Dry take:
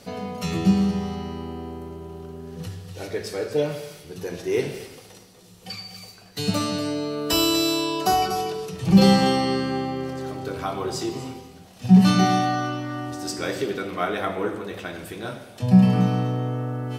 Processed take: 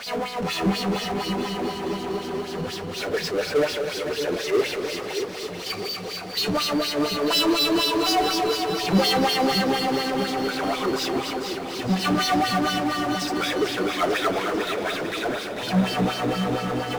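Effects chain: LFO band-pass sine 4.1 Hz 300–4700 Hz; power-law waveshaper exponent 0.5; two-band feedback delay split 560 Hz, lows 630 ms, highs 446 ms, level -7 dB

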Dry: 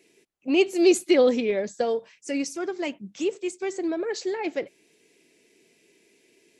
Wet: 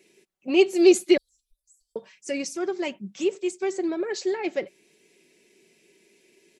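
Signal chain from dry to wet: 1.17–1.96 s: inverse Chebyshev band-stop 190–2100 Hz, stop band 80 dB; comb 5.3 ms, depth 41%

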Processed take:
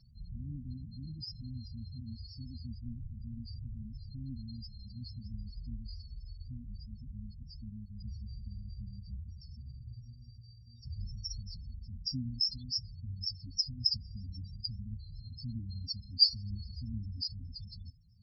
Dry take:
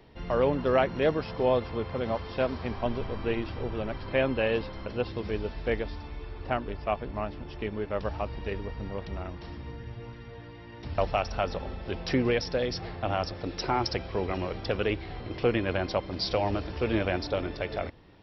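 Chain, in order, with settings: inverse Chebyshev band-stop 460–1900 Hz, stop band 50 dB; resonant high shelf 3.4 kHz +11 dB, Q 3; upward compressor, threshold -45 dBFS; loudest bins only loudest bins 8; comb of notches 180 Hz; trim -5 dB

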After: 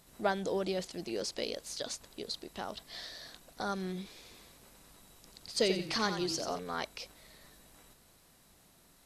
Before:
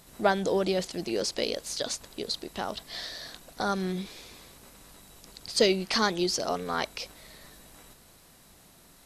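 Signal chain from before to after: 4.16–6.59 s: frequency-shifting echo 89 ms, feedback 32%, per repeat -30 Hz, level -8 dB; trim -7 dB

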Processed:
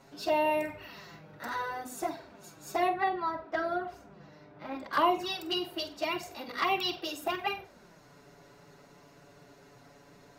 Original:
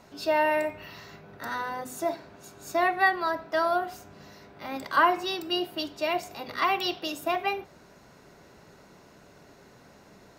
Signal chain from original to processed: 2.89–4.93 s: low-pass 1.7 kHz 6 dB/octave; touch-sensitive flanger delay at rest 7.8 ms, full sweep at -20.5 dBFS; flutter echo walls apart 8 m, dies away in 0.23 s

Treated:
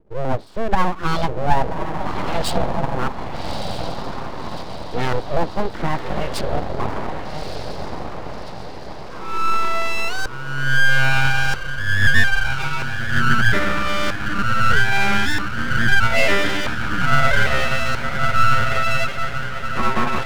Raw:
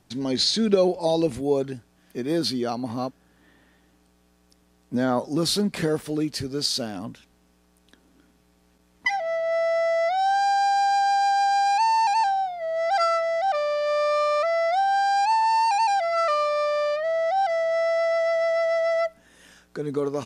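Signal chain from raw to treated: LFO low-pass saw up 0.78 Hz 240–3800 Hz; echo that smears into a reverb 1214 ms, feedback 56%, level -5 dB; full-wave rectifier; trim +4 dB

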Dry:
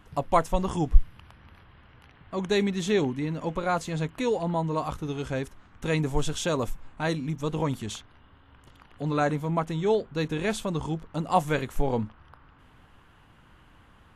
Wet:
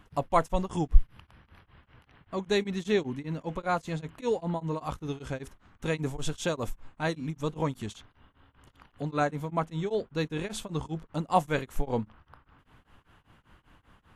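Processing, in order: tremolo of two beating tones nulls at 5.1 Hz; trim -1 dB

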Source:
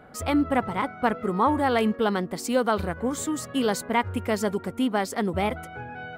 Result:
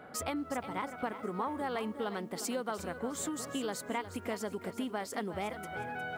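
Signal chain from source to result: compression 5:1, threshold -33 dBFS, peak gain reduction 14.5 dB; high-pass 210 Hz 6 dB/octave; bit-crushed delay 360 ms, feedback 35%, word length 10-bit, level -11 dB

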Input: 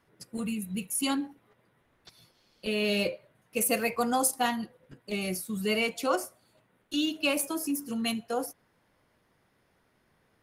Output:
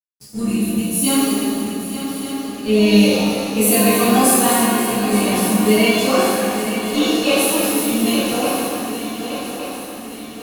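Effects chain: backward echo that repeats 146 ms, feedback 70%, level -8.5 dB; bass shelf 470 Hz +9 dB; shuffle delay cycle 1168 ms, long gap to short 3:1, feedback 54%, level -11 dB; crossover distortion -46.5 dBFS; treble shelf 3.5 kHz +7 dB; pitch-shifted reverb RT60 1.2 s, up +7 st, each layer -8 dB, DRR -10.5 dB; trim -4 dB

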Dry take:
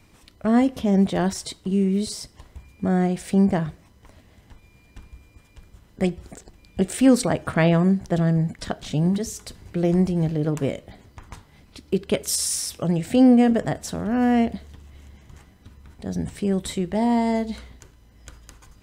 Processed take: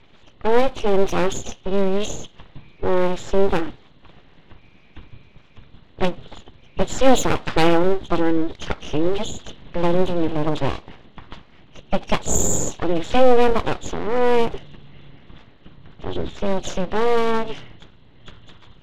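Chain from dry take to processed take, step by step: knee-point frequency compression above 2.7 kHz 4:1; full-wave rectifier; level-controlled noise filter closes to 3 kHz, open at -15 dBFS; trim +5 dB

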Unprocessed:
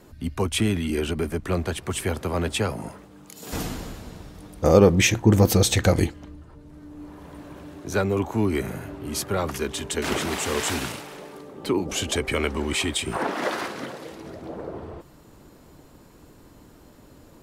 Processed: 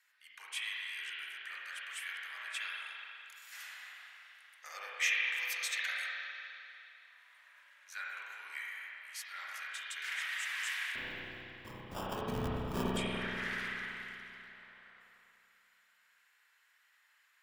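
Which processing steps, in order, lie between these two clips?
ladder high-pass 1.6 kHz, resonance 55%; 10.95–12.97 s: sample-rate reducer 2.1 kHz, jitter 0%; spring tank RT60 2.9 s, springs 32/48 ms, chirp 75 ms, DRR -5.5 dB; trim -6.5 dB

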